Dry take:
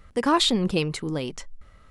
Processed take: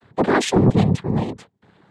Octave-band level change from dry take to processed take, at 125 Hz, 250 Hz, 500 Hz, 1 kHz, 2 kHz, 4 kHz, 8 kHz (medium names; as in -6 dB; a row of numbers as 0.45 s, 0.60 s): +11.5 dB, +6.0 dB, +6.0 dB, +2.5 dB, +5.0 dB, -6.0 dB, +1.0 dB